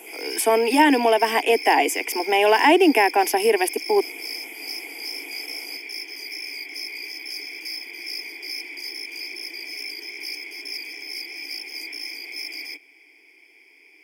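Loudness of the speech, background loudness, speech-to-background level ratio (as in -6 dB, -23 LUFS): -19.0 LUFS, -31.5 LUFS, 12.5 dB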